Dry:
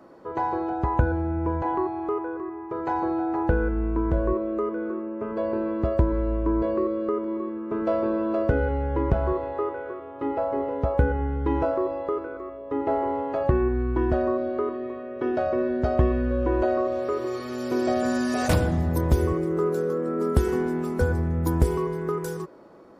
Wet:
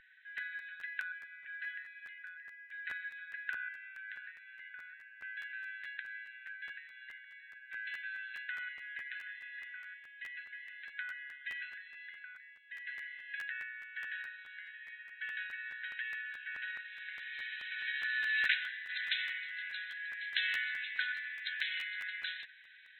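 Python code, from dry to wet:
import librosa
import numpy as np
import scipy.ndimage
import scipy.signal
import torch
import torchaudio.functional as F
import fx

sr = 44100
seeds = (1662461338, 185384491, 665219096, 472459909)

y = fx.brickwall_bandpass(x, sr, low_hz=1500.0, high_hz=4100.0)
y = fx.tilt_eq(y, sr, slope=fx.steps((0.0, -4.0), (18.88, 2.5)))
y = fx.buffer_crackle(y, sr, first_s=0.37, period_s=0.21, block=512, kind='repeat')
y = y * 10.0 ** (10.0 / 20.0)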